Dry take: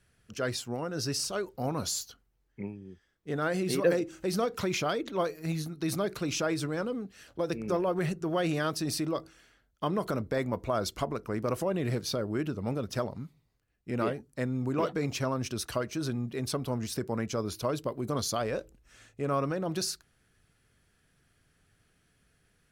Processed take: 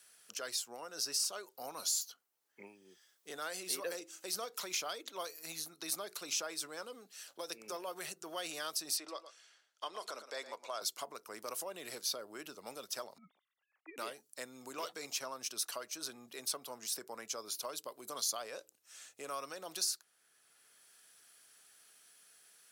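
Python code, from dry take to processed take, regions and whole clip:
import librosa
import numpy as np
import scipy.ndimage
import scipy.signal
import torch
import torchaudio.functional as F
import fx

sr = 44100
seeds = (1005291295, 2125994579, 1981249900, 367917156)

y = fx.chain(x, sr, fx.bandpass_edges(low_hz=360.0, high_hz=6500.0),
    fx.echo_single(ms=113, db=-12.0), at=(8.97, 10.82))
y = fx.chain(y, sr, fx.sine_speech(),
    fx.notch(hz=1000.0, q=18.0),
    fx.over_compress(threshold_db=-37.0, ratio=-0.5), at=(13.18, 13.98))
y = scipy.signal.sosfilt(scipy.signal.butter(2, 1300.0, 'highpass', fs=sr, output='sos'), y)
y = fx.peak_eq(y, sr, hz=1900.0, db=-14.0, octaves=2.2)
y = fx.band_squash(y, sr, depth_pct=40)
y = y * librosa.db_to_amplitude(5.5)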